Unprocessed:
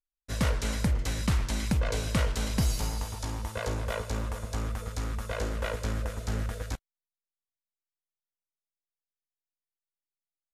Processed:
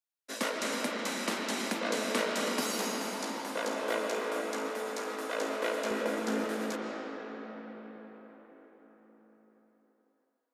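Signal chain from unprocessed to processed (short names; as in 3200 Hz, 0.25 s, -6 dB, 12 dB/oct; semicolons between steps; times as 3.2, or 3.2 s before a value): steep high-pass 240 Hz 48 dB/oct; 5.91–6.47 low shelf 450 Hz +11.5 dB; reverb RT60 5.3 s, pre-delay 95 ms, DRR -1.5 dB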